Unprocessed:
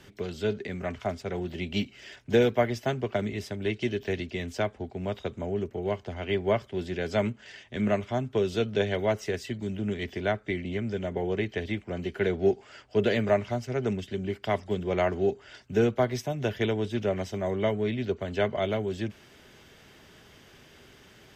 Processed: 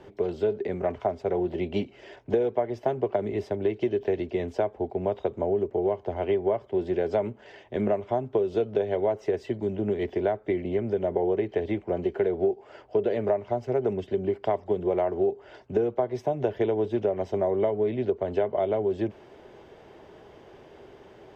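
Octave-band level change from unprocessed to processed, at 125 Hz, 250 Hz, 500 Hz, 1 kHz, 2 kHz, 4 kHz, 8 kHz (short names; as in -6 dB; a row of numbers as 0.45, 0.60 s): -4.0 dB, 0.0 dB, +3.5 dB, +2.0 dB, -8.0 dB, under -10 dB, n/a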